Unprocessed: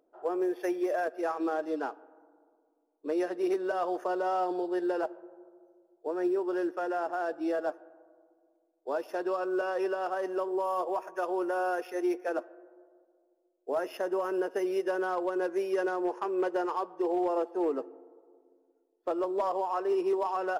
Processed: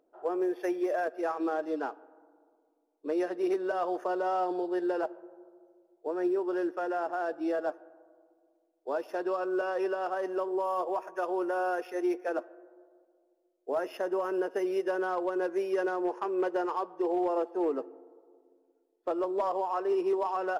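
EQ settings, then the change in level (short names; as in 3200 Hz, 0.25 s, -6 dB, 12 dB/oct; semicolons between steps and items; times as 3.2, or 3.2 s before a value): high shelf 5800 Hz -4.5 dB; 0.0 dB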